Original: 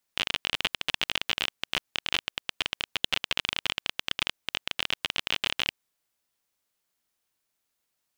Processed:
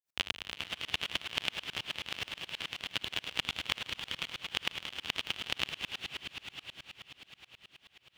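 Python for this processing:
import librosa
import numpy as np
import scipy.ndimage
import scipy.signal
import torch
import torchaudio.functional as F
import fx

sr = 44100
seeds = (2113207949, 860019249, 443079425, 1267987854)

p1 = fx.reverse_delay_fb(x, sr, ms=115, feedback_pct=69, wet_db=-9.0)
p2 = scipy.signal.sosfilt(scipy.signal.butter(2, 68.0, 'highpass', fs=sr, output='sos'), p1)
p3 = fx.low_shelf(p2, sr, hz=130.0, db=8.5)
p4 = p3 + fx.echo_diffused(p3, sr, ms=488, feedback_pct=57, wet_db=-5.5, dry=0)
y = fx.tremolo_decay(p4, sr, direction='swelling', hz=9.4, depth_db=30)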